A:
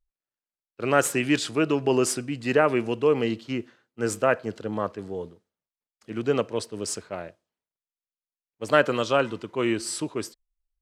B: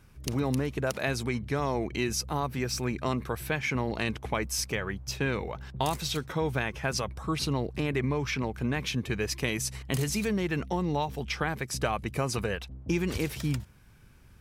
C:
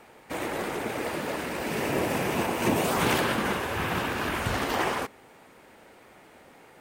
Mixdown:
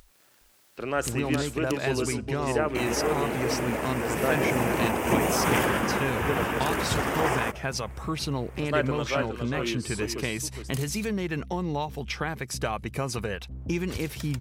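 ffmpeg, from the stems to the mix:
ffmpeg -i stem1.wav -i stem2.wav -i stem3.wav -filter_complex "[0:a]highpass=frequency=81:poles=1,volume=-7dB,asplit=2[link_01][link_02];[link_02]volume=-7.5dB[link_03];[1:a]adelay=800,volume=-0.5dB[link_04];[2:a]equalizer=frequency=4100:width=2.9:gain=-13.5,adelay=2450,volume=1dB[link_05];[link_03]aecho=0:1:413:1[link_06];[link_01][link_04][link_05][link_06]amix=inputs=4:normalize=0,acompressor=mode=upward:threshold=-29dB:ratio=2.5" out.wav

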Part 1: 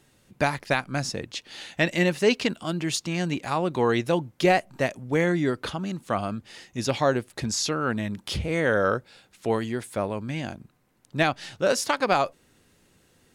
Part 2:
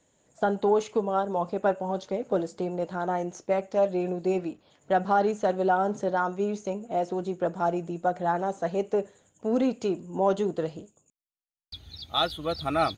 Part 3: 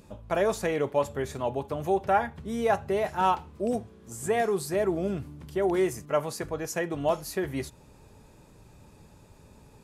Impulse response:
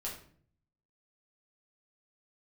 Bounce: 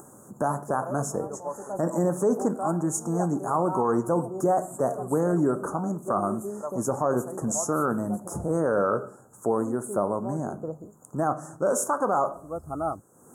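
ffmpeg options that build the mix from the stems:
-filter_complex "[0:a]highpass=150,equalizer=frequency=3000:width_type=o:width=1.9:gain=11.5,volume=0.5dB,asplit=3[link_01][link_02][link_03];[link_02]volume=-9dB[link_04];[1:a]adelay=50,volume=-3.5dB[link_05];[2:a]highpass=frequency=830:poles=1,adelay=500,volume=-4dB,asplit=2[link_06][link_07];[link_07]volume=-15.5dB[link_08];[link_03]apad=whole_len=574256[link_09];[link_05][link_09]sidechaincompress=threshold=-38dB:ratio=8:attack=44:release=205[link_10];[3:a]atrim=start_sample=2205[link_11];[link_04][link_11]afir=irnorm=-1:irlink=0[link_12];[link_08]aecho=0:1:141|282|423|564|705|846|987|1128|1269|1410:1|0.6|0.36|0.216|0.13|0.0778|0.0467|0.028|0.0168|0.0101[link_13];[link_01][link_10][link_06][link_12][link_13]amix=inputs=5:normalize=0,acompressor=mode=upward:threshold=-33dB:ratio=2.5,asuperstop=centerf=3100:order=12:qfactor=0.54,alimiter=limit=-14.5dB:level=0:latency=1:release=20"

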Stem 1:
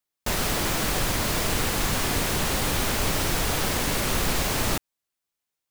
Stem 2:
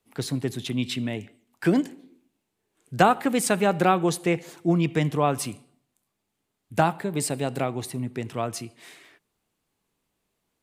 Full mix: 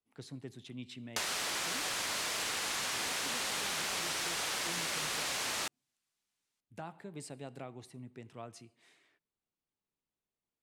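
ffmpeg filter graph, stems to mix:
ffmpeg -i stem1.wav -i stem2.wav -filter_complex "[0:a]highpass=frequency=1400:poles=1,adelay=900,volume=2.5dB[link_01];[1:a]alimiter=limit=-14dB:level=0:latency=1:release=88,volume=-18dB[link_02];[link_01][link_02]amix=inputs=2:normalize=0,lowpass=9100,acompressor=threshold=-33dB:ratio=6" out.wav

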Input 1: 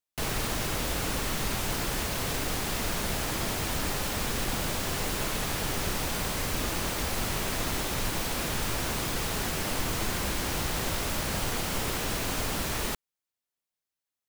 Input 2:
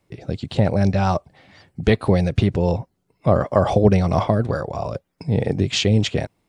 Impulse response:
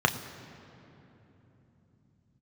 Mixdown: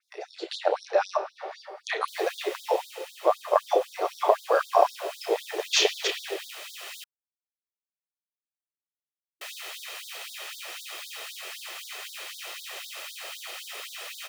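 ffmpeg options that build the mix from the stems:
-filter_complex "[0:a]equalizer=frequency=2800:width=1.1:gain=9,aecho=1:1:1.6:0.39,adelay=1900,volume=-16.5dB,asplit=3[link_01][link_02][link_03];[link_01]atrim=end=7.04,asetpts=PTS-STARTPTS,afade=type=out:start_time=7.036:duration=0.004:curve=hsin[link_04];[link_02]atrim=start=7.04:end=9.41,asetpts=PTS-STARTPTS,volume=0[link_05];[link_03]atrim=start=9.41,asetpts=PTS-STARTPTS,afade=type=in:duration=0.004:curve=hsin[link_06];[link_04][link_05][link_06]concat=n=3:v=0:a=1[link_07];[1:a]acompressor=threshold=-22dB:ratio=4,adynamicequalizer=threshold=0.00398:dfrequency=4500:dqfactor=0.7:tfrequency=4500:tqfactor=0.7:attack=5:release=100:ratio=0.375:range=2:mode=cutabove:tftype=highshelf,volume=2dB,asplit=2[link_08][link_09];[link_09]volume=-10.5dB[link_10];[2:a]atrim=start_sample=2205[link_11];[link_10][link_11]afir=irnorm=-1:irlink=0[link_12];[link_07][link_08][link_12]amix=inputs=3:normalize=0,dynaudnorm=framelen=120:gausssize=11:maxgain=6.5dB,afftfilt=real='re*gte(b*sr/1024,310*pow(3500/310,0.5+0.5*sin(2*PI*3.9*pts/sr)))':imag='im*gte(b*sr/1024,310*pow(3500/310,0.5+0.5*sin(2*PI*3.9*pts/sr)))':win_size=1024:overlap=0.75"

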